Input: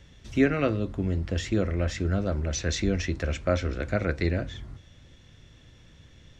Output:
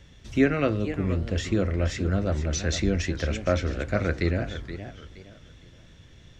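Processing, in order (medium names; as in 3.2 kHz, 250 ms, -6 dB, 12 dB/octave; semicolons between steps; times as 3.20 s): modulated delay 469 ms, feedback 31%, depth 199 cents, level -11.5 dB; trim +1 dB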